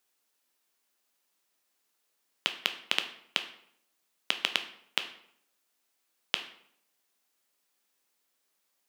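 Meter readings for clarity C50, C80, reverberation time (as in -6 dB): 11.5 dB, 14.5 dB, 0.70 s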